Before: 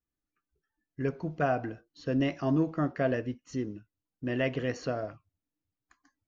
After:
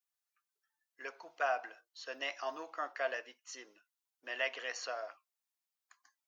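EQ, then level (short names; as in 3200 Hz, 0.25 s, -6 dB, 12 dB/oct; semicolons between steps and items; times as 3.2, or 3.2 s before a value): ladder high-pass 620 Hz, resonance 25%; high shelf 2600 Hz +9.5 dB; +1.5 dB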